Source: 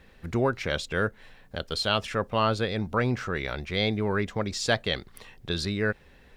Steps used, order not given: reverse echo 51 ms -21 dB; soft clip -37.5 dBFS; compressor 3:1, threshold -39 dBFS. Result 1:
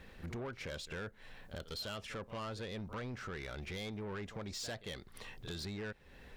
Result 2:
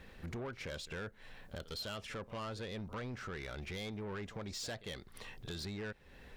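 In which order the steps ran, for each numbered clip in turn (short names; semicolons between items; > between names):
reverse echo > compressor > soft clip; compressor > reverse echo > soft clip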